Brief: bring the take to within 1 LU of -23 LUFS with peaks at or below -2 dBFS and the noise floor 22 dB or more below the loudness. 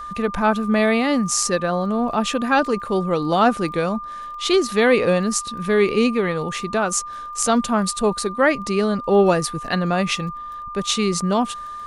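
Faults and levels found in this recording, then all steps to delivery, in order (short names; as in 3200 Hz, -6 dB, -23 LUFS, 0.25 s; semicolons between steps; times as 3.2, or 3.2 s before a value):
ticks 21/s; steady tone 1200 Hz; tone level -30 dBFS; loudness -20.0 LUFS; peak -2.5 dBFS; loudness target -23.0 LUFS
-> de-click; notch 1200 Hz, Q 30; gain -3 dB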